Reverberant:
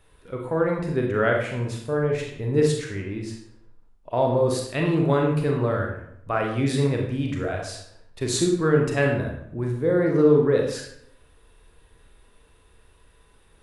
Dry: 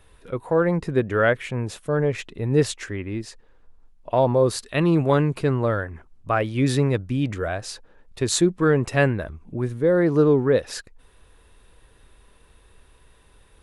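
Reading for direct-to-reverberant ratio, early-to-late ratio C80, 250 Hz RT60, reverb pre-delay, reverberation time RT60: 0.5 dB, 7.5 dB, 0.75 s, 30 ms, 0.70 s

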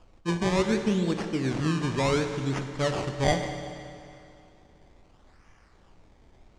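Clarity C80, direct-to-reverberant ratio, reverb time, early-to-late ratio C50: 7.5 dB, 5.5 dB, 2.5 s, 7.0 dB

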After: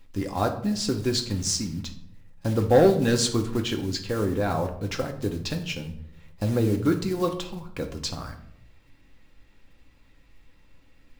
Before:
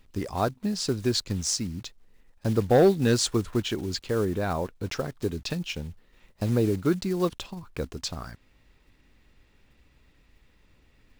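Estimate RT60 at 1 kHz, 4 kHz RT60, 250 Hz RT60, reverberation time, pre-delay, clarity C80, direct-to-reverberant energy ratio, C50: 0.60 s, 0.45 s, 0.90 s, 0.70 s, 4 ms, 13.5 dB, 3.0 dB, 10.5 dB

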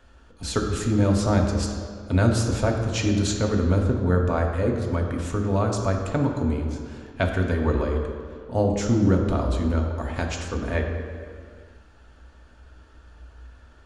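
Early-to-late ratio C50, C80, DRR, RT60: 4.0 dB, 5.5 dB, 1.0 dB, non-exponential decay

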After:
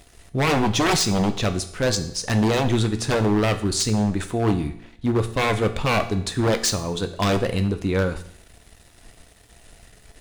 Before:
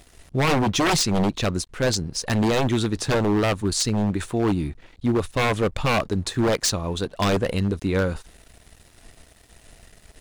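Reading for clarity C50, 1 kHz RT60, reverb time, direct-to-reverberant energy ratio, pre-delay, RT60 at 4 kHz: 13.0 dB, 0.70 s, 0.65 s, 8.0 dB, 4 ms, 0.65 s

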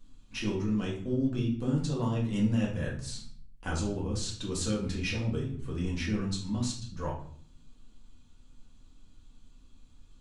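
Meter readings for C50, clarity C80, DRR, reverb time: 6.5 dB, 11.0 dB, −4.5 dB, 0.55 s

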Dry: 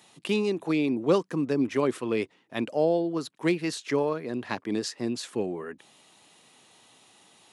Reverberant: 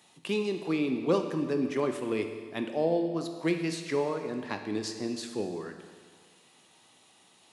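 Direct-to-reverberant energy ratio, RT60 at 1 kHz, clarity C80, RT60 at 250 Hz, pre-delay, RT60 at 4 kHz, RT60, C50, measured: 5.5 dB, 1.7 s, 8.5 dB, 1.7 s, 12 ms, 1.7 s, 1.7 s, 7.5 dB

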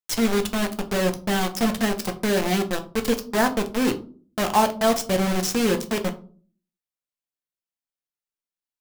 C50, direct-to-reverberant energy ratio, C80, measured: 15.5 dB, 5.5 dB, 19.5 dB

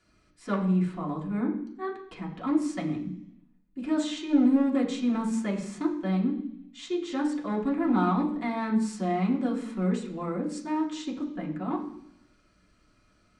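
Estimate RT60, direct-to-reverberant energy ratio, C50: 0.70 s, −3.0 dB, 9.0 dB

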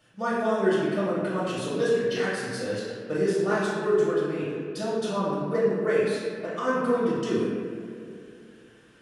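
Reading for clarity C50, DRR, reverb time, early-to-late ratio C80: −2.0 dB, −9.0 dB, 2.4 s, 0.0 dB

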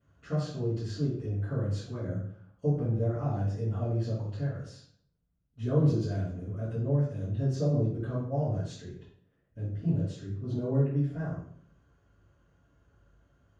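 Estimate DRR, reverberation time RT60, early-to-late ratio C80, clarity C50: −14.5 dB, 0.60 s, 6.5 dB, 2.0 dB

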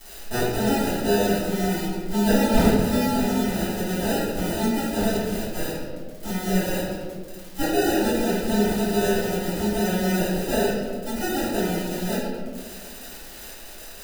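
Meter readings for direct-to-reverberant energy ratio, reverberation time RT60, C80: −14.0 dB, 1.7 s, 1.0 dB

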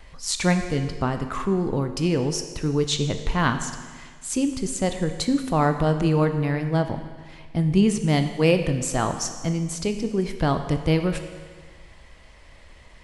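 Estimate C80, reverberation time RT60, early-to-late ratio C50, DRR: 10.0 dB, 1.6 s, 9.0 dB, 7.0 dB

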